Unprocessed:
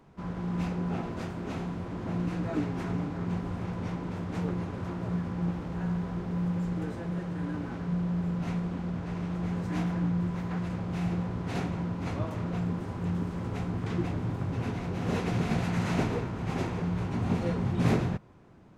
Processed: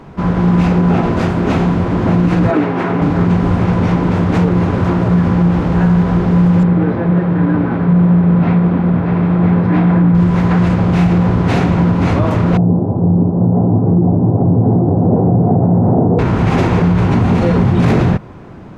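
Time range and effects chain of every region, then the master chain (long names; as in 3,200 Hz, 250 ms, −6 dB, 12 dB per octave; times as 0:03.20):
0:02.51–0:03.02: high-pass filter 110 Hz + bass and treble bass −9 dB, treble −11 dB
0:06.63–0:10.15: high-pass filter 100 Hz + high-frequency loss of the air 330 metres + notch filter 2,900 Hz, Q 20
0:12.57–0:16.19: elliptic band-pass filter 100–760 Hz, stop band 60 dB + single-tap delay 835 ms −3 dB
whole clip: high-shelf EQ 5,300 Hz −10 dB; boost into a limiter +24.5 dB; level −3 dB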